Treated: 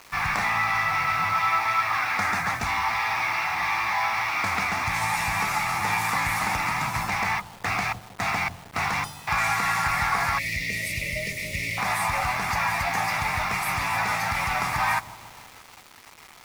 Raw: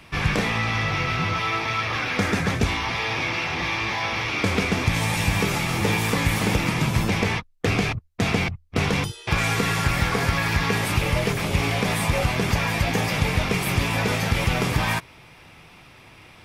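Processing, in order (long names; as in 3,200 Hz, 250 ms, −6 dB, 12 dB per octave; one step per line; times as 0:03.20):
low shelf with overshoot 610 Hz −9.5 dB, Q 3
delay with a low-pass on its return 156 ms, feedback 62%, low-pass 680 Hz, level −13 dB
time-frequency box erased 0:10.38–0:11.78, 650–1,800 Hz
thirty-one-band graphic EQ 1,250 Hz +5 dB, 2,000 Hz +5 dB, 3,150 Hz −9 dB
bit reduction 7 bits
level −2.5 dB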